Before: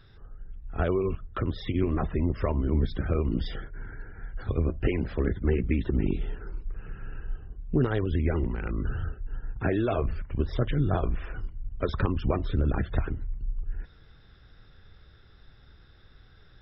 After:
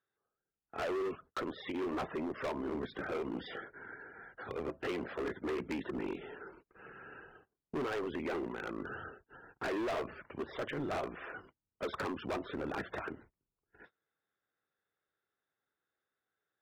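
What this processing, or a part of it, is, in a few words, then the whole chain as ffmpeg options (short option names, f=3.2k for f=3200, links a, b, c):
walkie-talkie: -af "highpass=400,lowpass=2.3k,asoftclip=type=hard:threshold=-34.5dB,agate=range=-26dB:threshold=-58dB:ratio=16:detection=peak,volume=1.5dB"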